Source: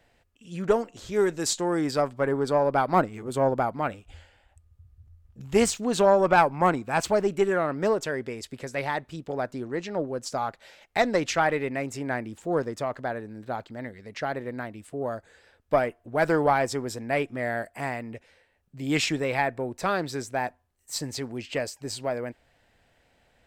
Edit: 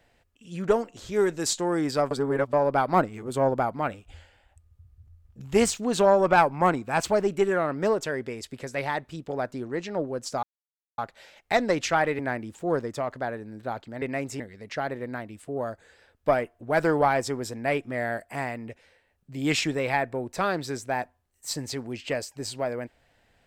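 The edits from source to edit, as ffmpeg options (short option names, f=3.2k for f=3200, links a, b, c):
-filter_complex "[0:a]asplit=7[a][b][c][d][e][f][g];[a]atrim=end=2.112[h];[b]atrim=start=2.108:end=2.532,asetpts=PTS-STARTPTS,areverse[i];[c]atrim=start=2.528:end=10.43,asetpts=PTS-STARTPTS,afade=t=out:st=7.898:d=0.004:c=hsin,apad=pad_dur=0.55[j];[d]atrim=start=10.43:end=11.642,asetpts=PTS-STARTPTS,afade=t=in:d=0.004:c=hsin[k];[e]atrim=start=12.018:end=13.852[l];[f]atrim=start=11.638:end=12.022[m];[g]atrim=start=13.848[n];[h][i]acrossfade=d=0.004:c1=hsin:c2=hsin[o];[j][k]concat=n=2:v=0:a=1[p];[o][p]acrossfade=d=0.004:c1=hsin:c2=hsin[q];[q][l]acrossfade=d=0.004:c1=hsin:c2=hsin[r];[r][m]acrossfade=d=0.004:c1=hsin:c2=hsin[s];[s][n]acrossfade=d=0.004:c1=hsin:c2=hsin"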